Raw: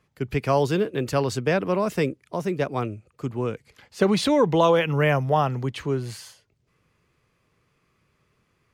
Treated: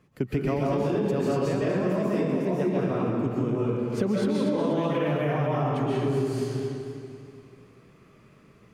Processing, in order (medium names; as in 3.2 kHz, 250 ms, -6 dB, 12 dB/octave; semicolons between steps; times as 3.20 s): reverberation RT60 1.5 s, pre-delay 100 ms, DRR -7.5 dB; peak limiter -8 dBFS, peak gain reduction 7.5 dB; peaking EQ 240 Hz +9.5 dB 2 oct; compression 6:1, threshold -24 dBFS, peak gain reduction 17 dB; peaking EQ 4.5 kHz -2 dB; modulated delay 242 ms, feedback 52%, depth 69 cents, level -10 dB